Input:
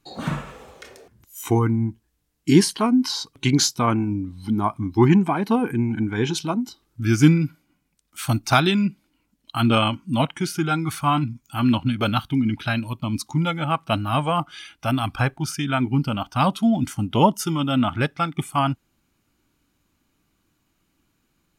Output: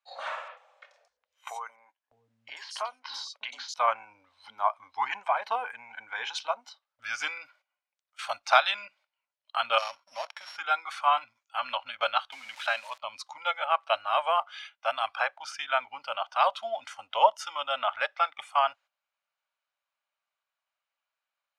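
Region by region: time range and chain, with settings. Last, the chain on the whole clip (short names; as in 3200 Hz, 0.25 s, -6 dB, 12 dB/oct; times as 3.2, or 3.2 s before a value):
0.48–3.74 compressor 3:1, threshold -24 dBFS + three bands offset in time mids, highs, lows 90/610 ms, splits 280/4200 Hz
9.78–10.57 sample sorter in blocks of 8 samples + sample leveller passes 1 + compressor 2:1, threshold -35 dBFS
12.32–12.98 switching spikes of -26 dBFS + low shelf 150 Hz -9 dB + three-band squash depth 40%
whole clip: LPF 4200 Hz 12 dB/oct; gate -41 dBFS, range -11 dB; elliptic high-pass 570 Hz, stop band 40 dB; gain -1.5 dB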